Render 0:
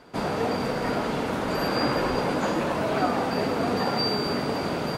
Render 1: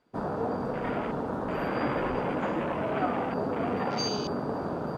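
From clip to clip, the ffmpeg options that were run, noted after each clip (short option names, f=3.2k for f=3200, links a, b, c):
-af "afwtdn=0.0251,volume=-4dB"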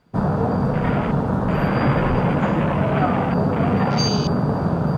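-af "lowshelf=f=220:t=q:w=1.5:g=8.5,volume=8.5dB"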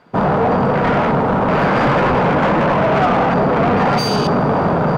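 -filter_complex "[0:a]asplit=2[a][b];[b]highpass=f=720:p=1,volume=23dB,asoftclip=type=tanh:threshold=-5.5dB[c];[a][c]amix=inputs=2:normalize=0,lowpass=f=1.5k:p=1,volume=-6dB"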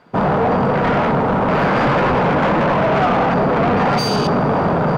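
-af "asoftclip=type=tanh:threshold=-7.5dB"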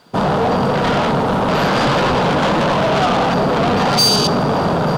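-af "aexciter=amount=4.1:drive=5.2:freq=3.1k"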